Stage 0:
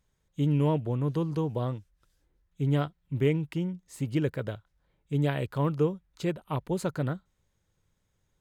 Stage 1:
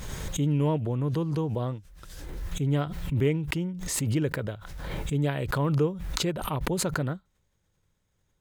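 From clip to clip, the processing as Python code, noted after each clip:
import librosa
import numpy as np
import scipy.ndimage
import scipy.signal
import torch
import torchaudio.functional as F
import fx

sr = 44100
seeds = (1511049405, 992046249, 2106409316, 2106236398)

y = fx.pre_swell(x, sr, db_per_s=34.0)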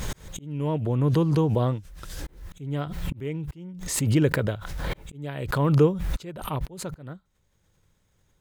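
y = fx.auto_swell(x, sr, attack_ms=725.0)
y = F.gain(torch.from_numpy(y), 6.5).numpy()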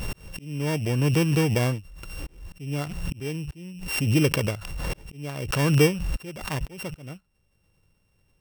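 y = np.r_[np.sort(x[:len(x) // 16 * 16].reshape(-1, 16), axis=1).ravel(), x[len(x) // 16 * 16:]]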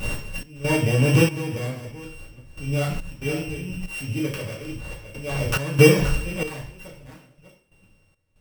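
y = fx.reverse_delay(x, sr, ms=341, wet_db=-9.0)
y = fx.rev_double_slope(y, sr, seeds[0], early_s=0.48, late_s=1.9, knee_db=-24, drr_db=-5.5)
y = fx.step_gate(y, sr, bpm=70, pattern='xx.xxx......', floor_db=-12.0, edge_ms=4.5)
y = F.gain(torch.from_numpy(y), -1.0).numpy()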